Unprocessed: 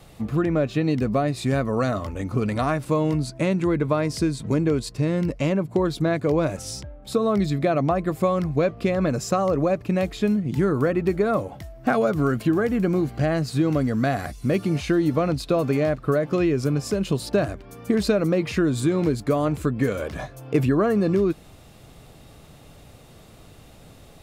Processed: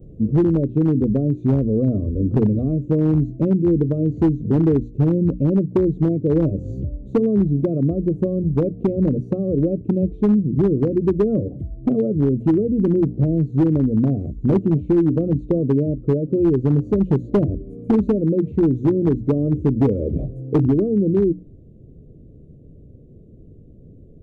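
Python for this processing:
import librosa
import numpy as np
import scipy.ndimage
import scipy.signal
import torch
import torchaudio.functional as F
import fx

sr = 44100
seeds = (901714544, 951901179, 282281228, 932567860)

y = fx.freq_compress(x, sr, knee_hz=3700.0, ratio=1.5)
y = fx.rider(y, sr, range_db=10, speed_s=0.5)
y = scipy.signal.sosfilt(scipy.signal.cheby2(4, 40, [830.0, 9000.0], 'bandstop', fs=sr, output='sos'), y)
y = fx.hum_notches(y, sr, base_hz=60, count=5)
y = np.clip(y, -10.0 ** (-17.0 / 20.0), 10.0 ** (-17.0 / 20.0))
y = y * librosa.db_to_amplitude(6.5)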